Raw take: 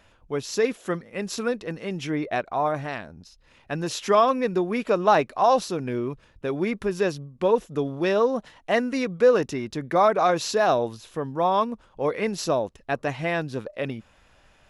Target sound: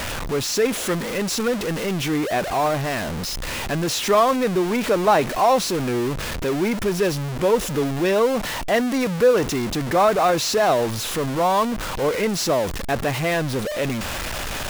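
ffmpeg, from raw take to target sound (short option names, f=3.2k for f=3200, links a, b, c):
-af "aeval=exprs='val(0)+0.5*0.0794*sgn(val(0))':c=same"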